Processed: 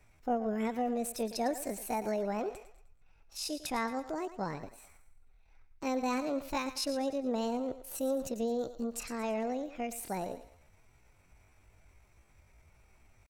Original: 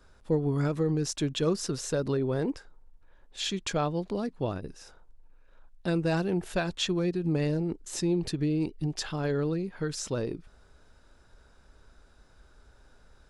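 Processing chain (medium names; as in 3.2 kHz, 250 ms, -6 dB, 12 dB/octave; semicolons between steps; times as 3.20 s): thinning echo 107 ms, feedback 42%, high-pass 310 Hz, level -11 dB; pitch shift +7.5 st; trim -5.5 dB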